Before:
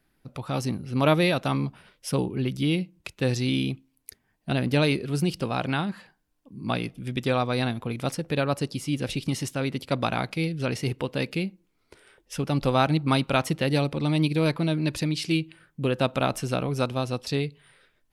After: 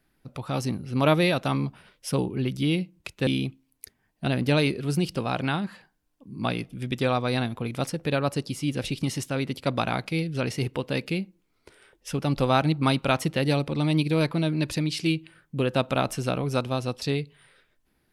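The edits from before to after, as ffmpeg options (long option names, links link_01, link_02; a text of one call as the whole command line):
ffmpeg -i in.wav -filter_complex "[0:a]asplit=2[link_01][link_02];[link_01]atrim=end=3.272[link_03];[link_02]atrim=start=3.518[link_04];[link_03][link_04]acrossfade=duration=0.004:curve1=hsin:curve2=hsin" out.wav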